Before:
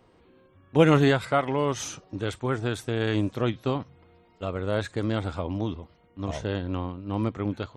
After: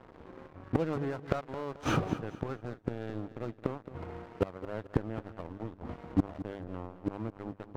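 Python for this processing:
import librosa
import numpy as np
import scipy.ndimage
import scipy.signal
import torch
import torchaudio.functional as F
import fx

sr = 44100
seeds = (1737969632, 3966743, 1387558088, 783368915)

p1 = scipy.signal.sosfilt(scipy.signal.butter(2, 1300.0, 'lowpass', fs=sr, output='sos'), x)
p2 = fx.hum_notches(p1, sr, base_hz=50, count=5)
p3 = fx.highpass(p2, sr, hz=56.0, slope=24, at=(3.63, 4.67))
p4 = fx.rider(p3, sr, range_db=5, speed_s=0.5)
p5 = p3 + (p4 * librosa.db_to_amplitude(2.0))
p6 = fx.gate_flip(p5, sr, shuts_db=-19.0, range_db=-29)
p7 = fx.leveller(p6, sr, passes=3)
p8 = p7 + fx.echo_feedback(p7, sr, ms=218, feedback_pct=35, wet_db=-14.0, dry=0)
y = p8 * librosa.db_to_amplitude(-1.0)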